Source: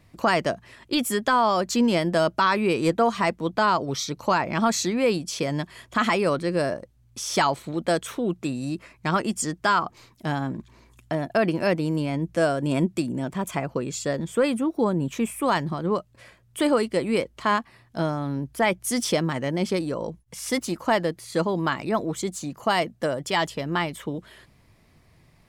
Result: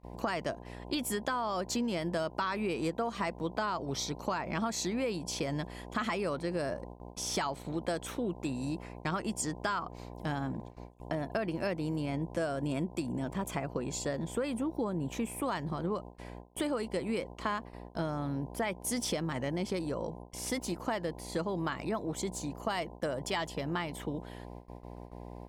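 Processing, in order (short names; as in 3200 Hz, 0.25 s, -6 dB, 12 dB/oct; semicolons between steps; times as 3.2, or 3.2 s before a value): buzz 60 Hz, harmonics 17, -40 dBFS -3 dB/oct; compressor, threshold -24 dBFS, peak gain reduction 8.5 dB; gate with hold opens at -29 dBFS; gain -5.5 dB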